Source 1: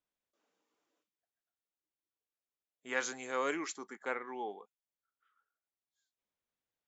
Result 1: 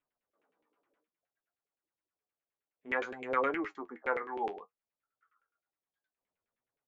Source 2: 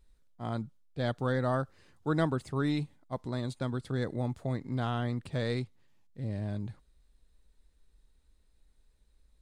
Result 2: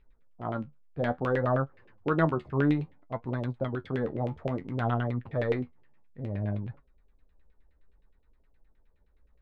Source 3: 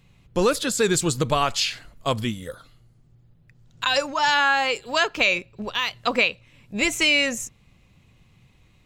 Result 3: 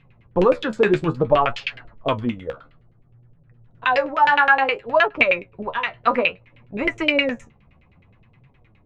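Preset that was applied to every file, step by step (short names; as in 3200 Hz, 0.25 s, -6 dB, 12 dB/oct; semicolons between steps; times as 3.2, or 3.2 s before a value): LFO low-pass saw down 9.6 Hz 410–2700 Hz; flange 0.59 Hz, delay 6.9 ms, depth 7.9 ms, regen +49%; gain +5 dB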